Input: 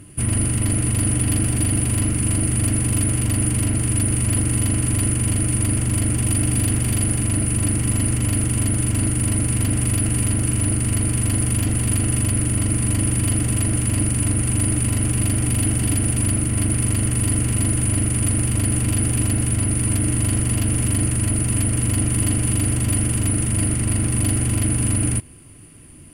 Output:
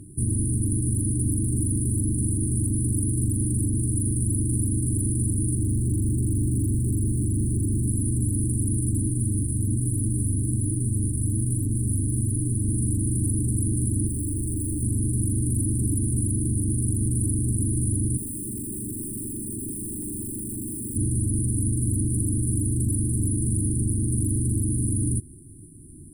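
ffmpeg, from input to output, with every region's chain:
-filter_complex "[0:a]asettb=1/sr,asplit=3[a][b][c];[a]atrim=end=5.554[d];[b]atrim=start=5.55:end=7.86,asetpts=PTS-STARTPTS,afade=t=in:d=0.004:c=qsin,afade=t=out:st=2.306:d=0.004:c=qsin,acrossover=split=4600[e][f];[f]acompressor=threshold=-28dB:ratio=4:attack=1:release=60[g];[e][g]amix=inputs=2:normalize=0,volume=20dB,asoftclip=hard,volume=-20dB[h];[c]atrim=start=7.856[i];[d][h]acrossfade=d=0.004:c1=hsin:c2=qsin[j];[j][i]acrossfade=d=0.004:c1=qsin:c2=hsin,asettb=1/sr,asplit=3[k][l][m];[k]atrim=end=9.084[n];[l]atrim=start=9.08:end=12.65,asetpts=PTS-STARTPTS,afade=t=in:d=0.004:c=qsin,afade=t=out:st=3.566:d=0.004:c=qsin,flanger=delay=6.5:depth=5.3:regen=-29:speed=1.2:shape=triangular,volume=14.5dB,asoftclip=hard,volume=-14.5dB[o];[m]atrim=start=12.646[p];[n][o]acrossfade=d=0.004:c1=hsin:c2=qsin[q];[q][p]acrossfade=d=0.004:c1=qsin:c2=hsin,asettb=1/sr,asplit=3[r][s][t];[r]atrim=end=14.074[u];[s]atrim=start=14.07:end=14.83,asetpts=PTS-STARTPTS,afade=t=in:d=0.004:c=qsin,afade=t=out:st=0.756:d=0.004:c=qsin,aecho=1:1:3.2:0.43,atrim=end_sample=33516,volume=24.5dB,asoftclip=hard,volume=-24.5dB[v];[t]atrim=start=14.826[w];[u][v]acrossfade=d=0.004:c1=hsin:c2=qsin[x];[x][w]acrossfade=d=0.004:c1=qsin:c2=hsin,asettb=1/sr,asplit=3[y][z][aa];[y]atrim=end=18.174[ab];[z]atrim=start=18.17:end=20.96,asetpts=PTS-STARTPTS,afade=t=in:d=0.004:c=qsin,afade=t=out:st=2.786:d=0.004:c=qsin,highpass=240,aeval=exprs='0.0596*(abs(mod(val(0)/0.0596+3,4)-2)-1)':c=same[ac];[aa]atrim=start=20.956[ad];[ab][ac]acrossfade=d=0.004:c1=hsin:c2=qsin[ae];[ae][ad]acrossfade=d=0.004:c1=qsin:c2=hsin,afftfilt=real='re*(1-between(b*sr/4096,400,7400))':imag='im*(1-between(b*sr/4096,400,7400))':win_size=4096:overlap=0.75,highshelf=f=5.9k:g=-4.5,alimiter=limit=-16.5dB:level=0:latency=1:release=28"

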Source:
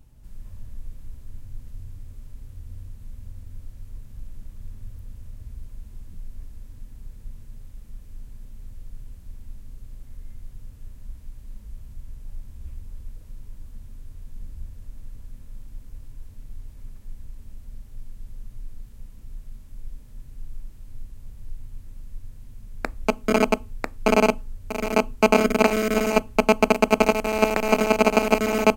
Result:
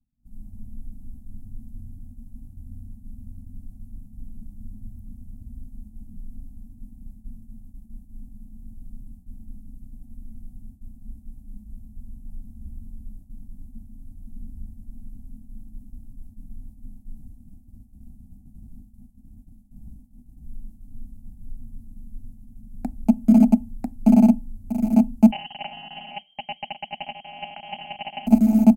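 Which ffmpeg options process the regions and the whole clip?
-filter_complex "[0:a]asettb=1/sr,asplit=3[a][b][c];[a]atrim=end=17.154[d];[b]atrim=start=17.15:end=20.46,asetpts=PTS-STARTPTS,afade=t=in:d=0.004:c=qsin,afade=t=out:st=3.306:d=0.004:c=qsin,aeval=exprs='0.0224*(abs(mod(val(0)/0.0224+3,4)-2)-1)':c=same,asplit=2[e][f];[f]adelay=20,volume=-7dB[g];[e][g]amix=inputs=2:normalize=0,atrim=end_sample=145971[h];[c]atrim=start=20.456[i];[d][h]acrossfade=d=0.004:c1=hsin:c2=qsin[j];[j][i]acrossfade=d=0.004:c1=qsin:c2=hsin,asettb=1/sr,asplit=3[k][l][m];[k]atrim=end=25.314[n];[l]atrim=start=25.31:end=28.27,asetpts=PTS-STARTPTS,afade=t=in:d=0.004:c=qsin,afade=t=out:st=2.956:d=0.004:c=qsin,lowpass=f=2.7k:t=q:w=0.5098,lowpass=f=2.7k:t=q:w=0.6013,lowpass=f=2.7k:t=q:w=0.9,lowpass=f=2.7k:t=q:w=2.563,afreqshift=-3200,aecho=1:1:1.4:0.35,atrim=end_sample=130536[o];[m]atrim=start=28.266[p];[n][o]acrossfade=d=0.004:c1=hsin:c2=qsin[q];[q][p]acrossfade=d=0.004:c1=qsin:c2=hsin,agate=range=-33dB:threshold=-35dB:ratio=3:detection=peak,firequalizer=gain_entry='entry(140,0);entry(230,15);entry(430,-22);entry(750,0);entry(1100,-24);entry(10000,-3)':delay=0.05:min_phase=1,volume=-1dB"

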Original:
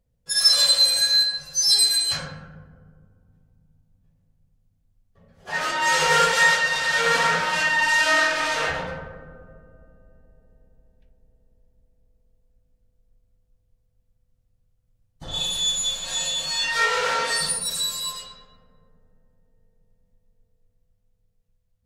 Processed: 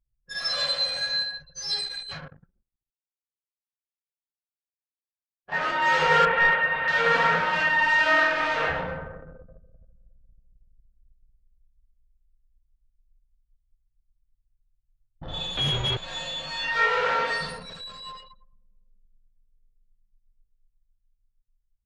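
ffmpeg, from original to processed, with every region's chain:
-filter_complex "[0:a]asettb=1/sr,asplit=3[a][b][c];[a]atrim=end=1.814[d];[b]atrim=start=1.81:end=5.52,asetpts=PTS-STARTPTS,afade=t=in:d=0.004:c=qsin,afade=t=out:st=3.706:d=0.004:c=qsin,flanger=delay=0.3:depth=7.9:regen=59:speed=1:shape=triangular,aeval=exprs='sgn(val(0))*max(abs(val(0))-0.00447,0)':c=same[e];[c]atrim=start=5.516[f];[d][e]acrossfade=d=0.004:c1=hsin:c2=qsin[g];[g][f]acrossfade=d=0.004:c1=qsin:c2=hsin,asettb=1/sr,asplit=3[h][i][j];[h]atrim=end=6.254[k];[i]atrim=start=6.25:end=6.88,asetpts=PTS-STARTPTS,afade=t=in:d=0.004:c=qsin,afade=t=out:st=0.626:d=0.004:c=qsin,lowpass=f=2.7k:w=0.5412,lowpass=f=2.7k:w=1.3066,aeval=exprs='clip(val(0),-1,0.15)':c=same[l];[j]atrim=start=6.876[m];[k][l]acrossfade=d=0.004:c1=hsin:c2=qsin[n];[n][m]acrossfade=d=0.004:c1=qsin:c2=hsin,asettb=1/sr,asplit=3[o][p][q];[o]atrim=end=15.574[r];[p]atrim=start=15.57:end=15.97,asetpts=PTS-STARTPTS,afade=t=in:d=0.004:c=qsin,afade=t=out:st=0.396:d=0.004:c=qsin,afreqshift=-140,adynamicsmooth=sensitivity=2:basefreq=1.2k,aeval=exprs='0.15*sin(PI/2*3.16*val(0)/0.15)':c=same[s];[q]atrim=start=15.966[t];[r][s]acrossfade=d=0.004:c1=hsin:c2=qsin[u];[u][t]acrossfade=d=0.004:c1=qsin:c2=hsin,asettb=1/sr,asplit=3[v][w][x];[v]atrim=end=17.634[y];[w]atrim=start=17.63:end=18.18,asetpts=PTS-STARTPTS,afade=t=in:d=0.004:c=qsin,afade=t=out:st=0.546:d=0.004:c=qsin,highshelf=f=6.1k:g=-5.5,asoftclip=type=hard:threshold=-28dB[z];[x]atrim=start=18.176[aa];[y][z]acrossfade=d=0.004:c1=hsin:c2=qsin[ab];[ab][aa]acrossfade=d=0.004:c1=qsin:c2=hsin,lowpass=2.6k,anlmdn=0.158"

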